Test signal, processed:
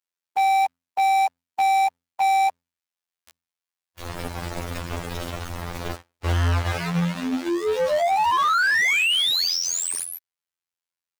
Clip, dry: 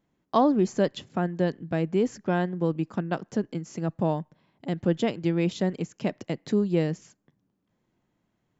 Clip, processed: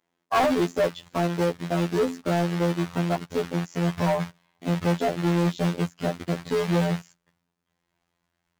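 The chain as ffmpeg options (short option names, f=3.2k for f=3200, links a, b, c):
-filter_complex "[0:a]bandreject=f=50:t=h:w=6,bandreject=f=100:t=h:w=6,bandreject=f=150:t=h:w=6,bandreject=f=200:t=h:w=6,bandreject=f=250:t=h:w=6,bandreject=f=300:t=h:w=6,afwtdn=0.0355,asubboost=boost=8:cutoff=100,asplit=2[a][b];[b]acompressor=threshold=-36dB:ratio=10,volume=1dB[c];[a][c]amix=inputs=2:normalize=0,acrusher=bits=3:mode=log:mix=0:aa=0.000001,afftfilt=real='hypot(re,im)*cos(PI*b)':imag='0':win_size=2048:overlap=0.75,asplit=2[d][e];[e]highpass=f=720:p=1,volume=30dB,asoftclip=type=tanh:threshold=-4dB[f];[d][f]amix=inputs=2:normalize=0,lowpass=f=5.5k:p=1,volume=-6dB,volume=-8dB"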